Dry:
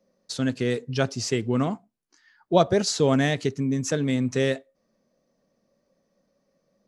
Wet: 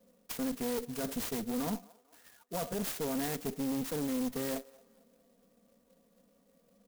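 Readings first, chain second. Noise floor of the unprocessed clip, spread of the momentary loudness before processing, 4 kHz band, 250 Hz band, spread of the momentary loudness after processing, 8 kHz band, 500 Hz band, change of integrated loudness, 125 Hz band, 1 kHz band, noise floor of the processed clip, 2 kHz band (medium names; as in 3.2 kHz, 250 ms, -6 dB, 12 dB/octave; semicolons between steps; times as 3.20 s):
-74 dBFS, 7 LU, -12.5 dB, -9.5 dB, 5 LU, -8.0 dB, -13.5 dB, -11.0 dB, -18.0 dB, -12.0 dB, -69 dBFS, -14.0 dB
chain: peaking EQ 6 kHz -7 dB 0.32 oct; comb 4.2 ms, depth 95%; reverse; compression 12:1, threshold -27 dBFS, peak gain reduction 17.5 dB; reverse; peak limiter -23.5 dBFS, peak gain reduction 6.5 dB; one-sided clip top -37 dBFS; on a send: feedback echo behind a band-pass 224 ms, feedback 44%, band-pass 820 Hz, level -22 dB; on the sum: sampling jitter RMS 0.11 ms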